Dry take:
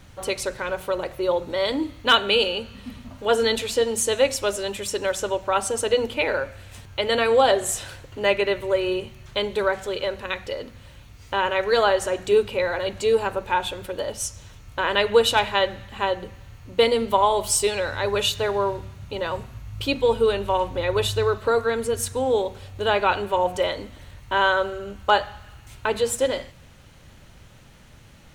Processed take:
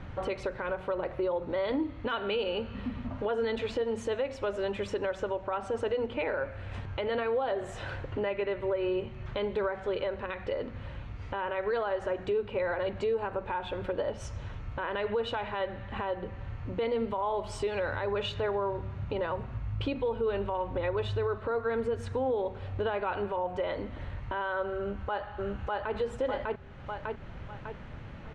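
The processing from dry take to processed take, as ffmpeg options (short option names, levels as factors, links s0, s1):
-filter_complex "[0:a]asplit=2[s0][s1];[s1]afade=t=in:st=24.78:d=0.01,afade=t=out:st=25.95:d=0.01,aecho=0:1:600|1200|1800|2400:1|0.25|0.0625|0.015625[s2];[s0][s2]amix=inputs=2:normalize=0,lowpass=1900,acompressor=threshold=0.01:ratio=2,alimiter=level_in=1.68:limit=0.0631:level=0:latency=1:release=70,volume=0.596,volume=2"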